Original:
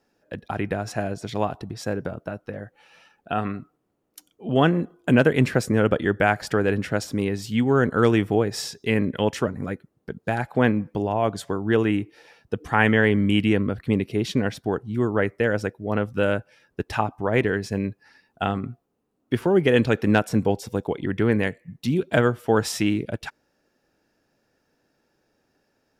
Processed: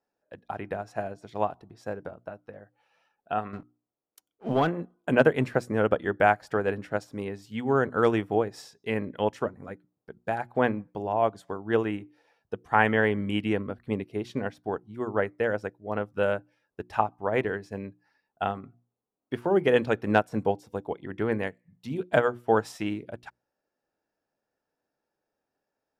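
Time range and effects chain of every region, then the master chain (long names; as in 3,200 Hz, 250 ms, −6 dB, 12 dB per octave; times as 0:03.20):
0:03.53–0:04.68: leveller curve on the samples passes 2 + downward compressor 10 to 1, threshold −15 dBFS
whole clip: parametric band 800 Hz +8 dB 1.9 octaves; mains-hum notches 60/120/180/240/300/360 Hz; expander for the loud parts 1.5 to 1, over −36 dBFS; level −5.5 dB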